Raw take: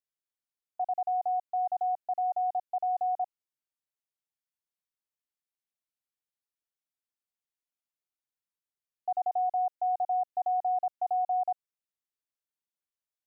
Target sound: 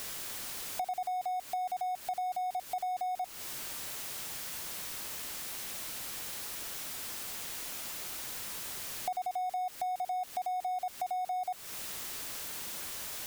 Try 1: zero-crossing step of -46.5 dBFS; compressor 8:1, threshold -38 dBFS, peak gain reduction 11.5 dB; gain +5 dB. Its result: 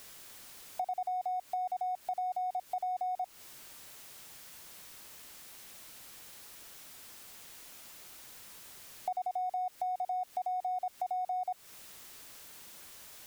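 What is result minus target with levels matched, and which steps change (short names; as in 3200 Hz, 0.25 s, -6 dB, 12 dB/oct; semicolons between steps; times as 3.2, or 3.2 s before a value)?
zero-crossing step: distortion -10 dB
change: zero-crossing step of -35.5 dBFS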